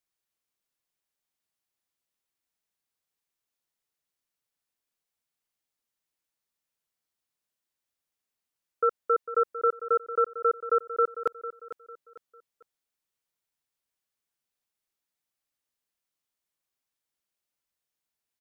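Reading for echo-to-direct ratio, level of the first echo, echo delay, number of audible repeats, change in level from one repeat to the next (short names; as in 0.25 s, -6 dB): -12.5 dB, -13.0 dB, 0.45 s, 3, -9.5 dB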